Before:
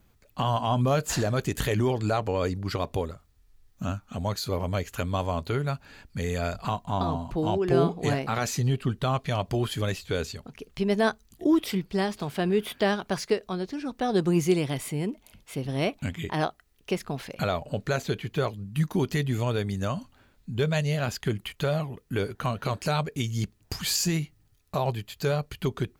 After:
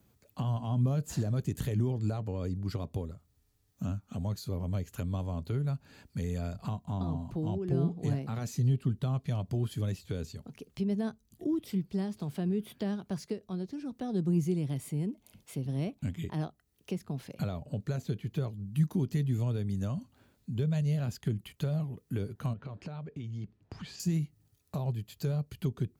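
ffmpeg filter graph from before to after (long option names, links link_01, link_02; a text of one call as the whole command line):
ffmpeg -i in.wav -filter_complex "[0:a]asettb=1/sr,asplit=3[link_01][link_02][link_03];[link_01]atrim=end=22.534[link_04];[link_02]atrim=start=22.53:end=24,asetpts=PTS-STARTPTS,afade=type=in:duration=0.004:curve=qsin,afade=type=out:start_time=1.466:duration=0.004:curve=qsin,lowpass=2700,acompressor=threshold=-35dB:ratio=4:attack=3.2:release=140:knee=1:detection=peak[link_05];[link_03]atrim=start=23.996[link_06];[link_04][link_05]acrossfade=duration=0.004:curve1=hsin:curve2=qsin[link_07];[link_07][link_06]acrossfade=duration=0.004:curve1=qsin:curve2=hsin,highpass=85,equalizer=frequency=1800:width_type=o:width=2.8:gain=-7,acrossover=split=240[link_08][link_09];[link_09]acompressor=threshold=-49dB:ratio=2[link_10];[link_08][link_10]amix=inputs=2:normalize=0" out.wav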